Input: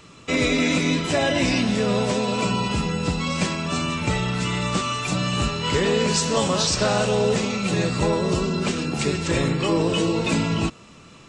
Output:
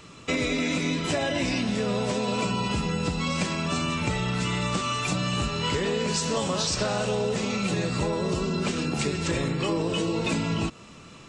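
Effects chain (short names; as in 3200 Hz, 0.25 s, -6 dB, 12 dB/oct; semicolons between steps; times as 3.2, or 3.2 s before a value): compressor, threshold -23 dBFS, peak gain reduction 7 dB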